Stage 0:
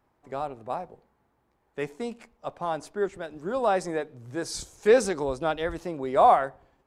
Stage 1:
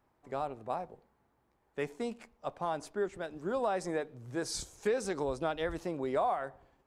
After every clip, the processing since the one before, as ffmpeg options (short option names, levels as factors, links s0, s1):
-af "acompressor=threshold=0.0562:ratio=6,volume=0.708"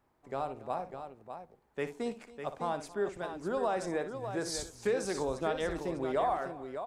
-af "aecho=1:1:59|276|601:0.266|0.119|0.376"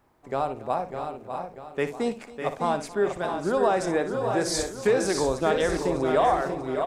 -af "aecho=1:1:640|1280|1920:0.447|0.0759|0.0129,volume=2.66"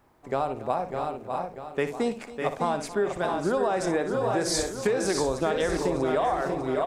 -af "acompressor=threshold=0.0631:ratio=6,volume=1.33"